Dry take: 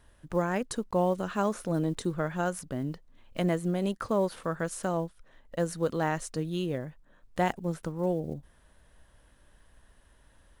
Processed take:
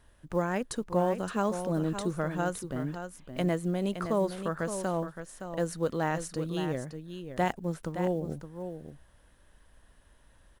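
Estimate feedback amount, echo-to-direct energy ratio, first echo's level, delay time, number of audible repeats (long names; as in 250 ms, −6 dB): repeats not evenly spaced, −9.0 dB, −9.0 dB, 567 ms, 1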